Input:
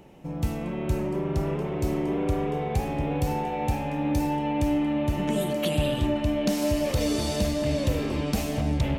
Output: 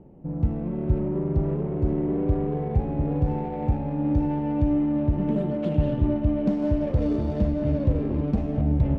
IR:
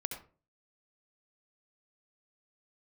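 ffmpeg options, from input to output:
-af "tiltshelf=f=770:g=8,adynamicsmooth=sensitivity=1.5:basefreq=1.3k,volume=-3.5dB"

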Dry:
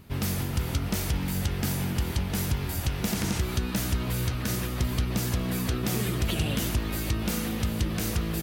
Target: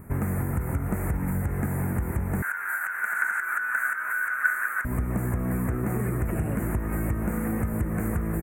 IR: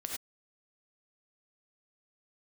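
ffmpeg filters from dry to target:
-filter_complex "[0:a]acrossover=split=4400[a][b];[b]acompressor=threshold=-42dB:ratio=4:attack=1:release=60[c];[a][c]amix=inputs=2:normalize=0,asuperstop=centerf=4100:order=8:qfactor=0.69,aecho=1:1:551:0.211,acompressor=threshold=-30dB:ratio=6,asettb=1/sr,asplit=3[d][e][f];[d]atrim=end=2.424[g];[e]atrim=start=2.42:end=4.85,asetpts=PTS-STARTPTS,afade=t=in:d=0.004:c=qsin,afade=t=out:st=2.426:d=0.004:c=qsin,highpass=f=1.5k:t=q:w=12[h];[f]atrim=start=4.846[i];[g][h]acrossfade=d=0.004:c1=hsin:c2=qsin[j];[j][i]acrossfade=d=0.004:c1=qsin:c2=hsin,volume=6.5dB"

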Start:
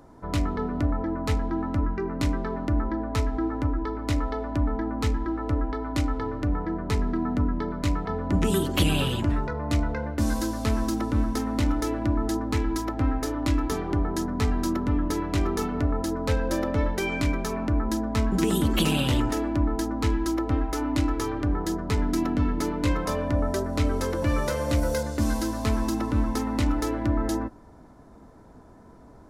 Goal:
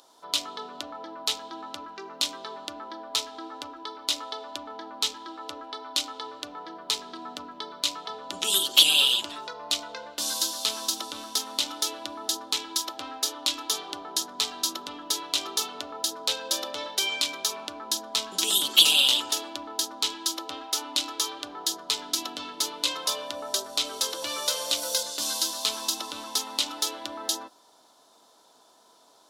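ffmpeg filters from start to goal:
-af "highpass=790,highshelf=f=2.6k:t=q:w=3:g=9.5"

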